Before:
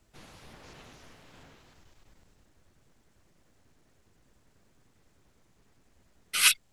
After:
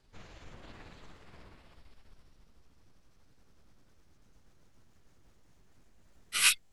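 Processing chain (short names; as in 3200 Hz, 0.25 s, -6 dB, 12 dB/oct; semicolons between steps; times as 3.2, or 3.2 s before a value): gliding pitch shift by -8.5 st ending unshifted; low shelf 61 Hz +6.5 dB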